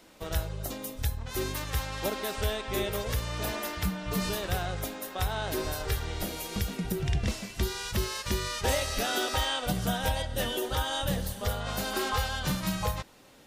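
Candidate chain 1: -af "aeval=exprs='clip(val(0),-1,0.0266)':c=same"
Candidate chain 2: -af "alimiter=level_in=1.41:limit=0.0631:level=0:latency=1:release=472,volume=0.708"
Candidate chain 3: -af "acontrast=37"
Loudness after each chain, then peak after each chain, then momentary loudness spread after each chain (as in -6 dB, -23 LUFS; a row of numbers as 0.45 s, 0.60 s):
-33.0 LUFS, -38.5 LUFS, -26.0 LUFS; -18.0 dBFS, -27.0 dBFS, -12.5 dBFS; 5 LU, 3 LU, 5 LU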